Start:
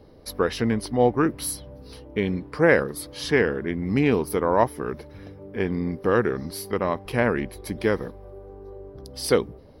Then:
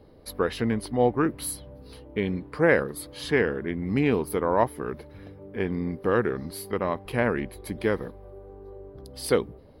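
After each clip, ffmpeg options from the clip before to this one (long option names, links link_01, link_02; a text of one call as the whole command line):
ffmpeg -i in.wav -af "equalizer=frequency=5600:width_type=o:width=0.28:gain=-10,volume=-2.5dB" out.wav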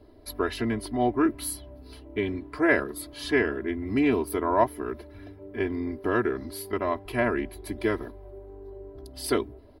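ffmpeg -i in.wav -af "aecho=1:1:3:0.97,volume=-3dB" out.wav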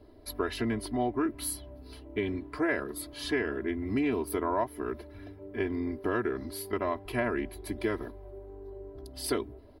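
ffmpeg -i in.wav -af "acompressor=threshold=-24dB:ratio=4,volume=-1.5dB" out.wav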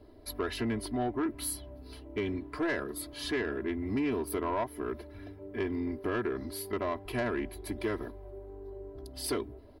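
ffmpeg -i in.wav -af "asoftclip=type=tanh:threshold=-24dB" out.wav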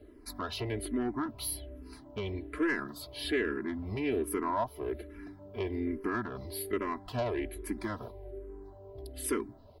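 ffmpeg -i in.wav -filter_complex "[0:a]asplit=2[link_01][link_02];[link_02]afreqshift=-1.2[link_03];[link_01][link_03]amix=inputs=2:normalize=1,volume=2.5dB" out.wav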